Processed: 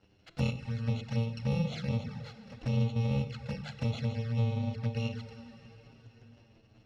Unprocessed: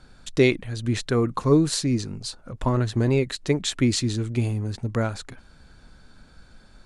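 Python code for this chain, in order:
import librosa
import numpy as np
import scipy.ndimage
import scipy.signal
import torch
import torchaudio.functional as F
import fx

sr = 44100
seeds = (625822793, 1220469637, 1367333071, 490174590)

y = fx.bit_reversed(x, sr, seeds[0], block=128)
y = scipy.signal.sosfilt(scipy.signal.butter(4, 4700.0, 'lowpass', fs=sr, output='sos'), y)
y = fx.peak_eq(y, sr, hz=1100.0, db=-8.0, octaves=0.6)
y = fx.leveller(y, sr, passes=1)
y = scipy.signal.sosfilt(scipy.signal.butter(2, 81.0, 'highpass', fs=sr, output='sos'), y)
y = fx.rev_plate(y, sr, seeds[1], rt60_s=3.8, hf_ratio=0.9, predelay_ms=0, drr_db=9.0)
y = fx.rider(y, sr, range_db=4, speed_s=2.0)
y = fx.env_flanger(y, sr, rest_ms=11.3, full_db=-21.5)
y = fx.high_shelf(y, sr, hz=2700.0, db=-11.0)
y = fx.hum_notches(y, sr, base_hz=50, count=9)
y = F.gain(torch.from_numpy(y), -5.5).numpy()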